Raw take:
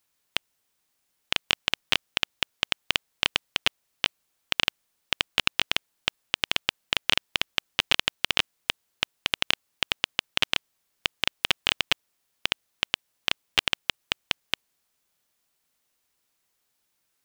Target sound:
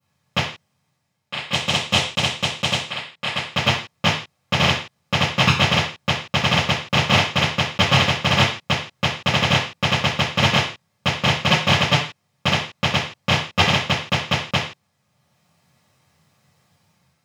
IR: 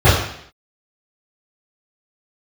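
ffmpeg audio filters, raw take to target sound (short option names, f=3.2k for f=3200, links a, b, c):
-filter_complex "[0:a]asettb=1/sr,asplit=3[a][b][c];[a]atrim=end=1.514[d];[b]atrim=start=1.51:end=2.79,asetpts=PTS-STARTPTS,afade=t=in:d=0.004:c=qsin,afade=t=out:st=1.276:d=0.004:c=qsin,equalizer=f=6.5k:w=0.38:g=12[e];[c]atrim=start=2.786[f];[d][e]acrossfade=d=0.004:c1=hsin:c2=qsin[g];[g][f]acrossfade=d=0.004:c1=qsin:c2=hsin,dynaudnorm=f=220:g=5:m=8dB,aeval=exprs='0.944*(cos(1*acos(clip(val(0)/0.944,-1,1)))-cos(1*PI/2))+0.211*(cos(2*acos(clip(val(0)/0.944,-1,1)))-cos(2*PI/2))+0.0668*(cos(8*acos(clip(val(0)/0.944,-1,1)))-cos(8*PI/2))':c=same[h];[1:a]atrim=start_sample=2205,afade=t=out:st=0.34:d=0.01,atrim=end_sample=15435,asetrate=66150,aresample=44100[i];[h][i]afir=irnorm=-1:irlink=0,volume=-15.5dB"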